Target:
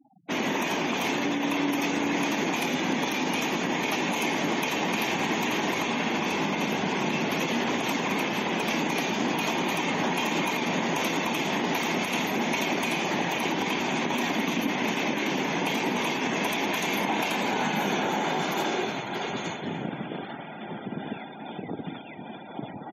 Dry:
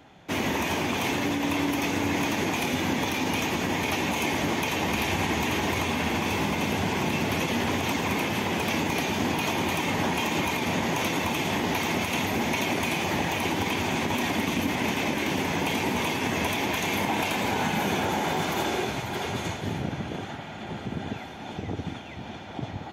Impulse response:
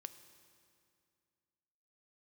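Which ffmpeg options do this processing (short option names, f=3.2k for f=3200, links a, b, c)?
-af "afftfilt=real='re*gte(hypot(re,im),0.0112)':imag='im*gte(hypot(re,im),0.0112)':win_size=1024:overlap=0.75,highpass=f=160:w=0.5412,highpass=f=160:w=1.3066,areverse,acompressor=mode=upward:threshold=-47dB:ratio=2.5,areverse,aecho=1:1:299:0.112"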